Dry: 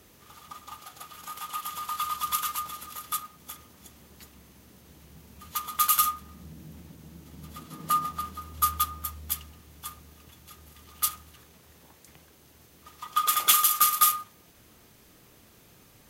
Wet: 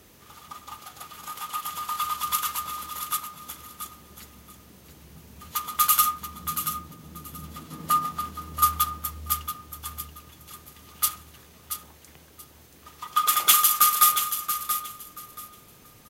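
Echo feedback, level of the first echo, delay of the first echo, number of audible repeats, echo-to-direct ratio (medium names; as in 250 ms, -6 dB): 20%, -9.0 dB, 680 ms, 2, -9.0 dB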